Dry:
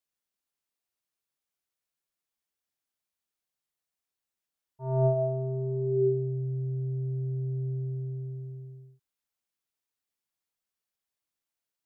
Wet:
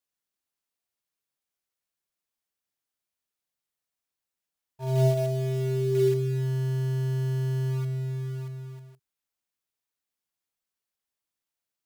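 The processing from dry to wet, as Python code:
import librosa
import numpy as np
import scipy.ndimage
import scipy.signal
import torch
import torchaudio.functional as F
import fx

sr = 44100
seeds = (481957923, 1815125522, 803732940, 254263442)

p1 = fx.quant_companded(x, sr, bits=4)
p2 = x + (p1 * 10.0 ** (-5.0 / 20.0))
y = fx.dynamic_eq(p2, sr, hz=940.0, q=0.87, threshold_db=-39.0, ratio=4.0, max_db=-7)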